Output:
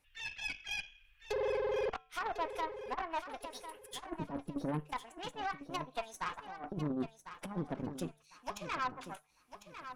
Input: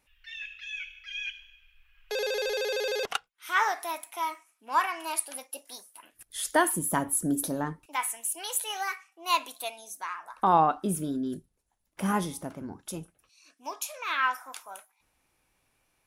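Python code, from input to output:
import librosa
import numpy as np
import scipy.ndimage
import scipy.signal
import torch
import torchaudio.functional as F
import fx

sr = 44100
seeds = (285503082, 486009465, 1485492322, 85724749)

p1 = fx.env_lowpass_down(x, sr, base_hz=830.0, full_db=-27.0)
p2 = fx.over_compress(p1, sr, threshold_db=-32.0, ratio=-0.5)
p3 = fx.comb_fb(p2, sr, f0_hz=150.0, decay_s=0.69, harmonics='odd', damping=0.0, mix_pct=40)
p4 = fx.stretch_vocoder(p3, sr, factor=0.62)
p5 = fx.cheby_harmonics(p4, sr, harmonics=(6, 7), levels_db=(-19, -30), full_scale_db=-26.5)
p6 = p5 + fx.echo_feedback(p5, sr, ms=1050, feedback_pct=25, wet_db=-11, dry=0)
y = F.gain(torch.from_numpy(p6), 1.5).numpy()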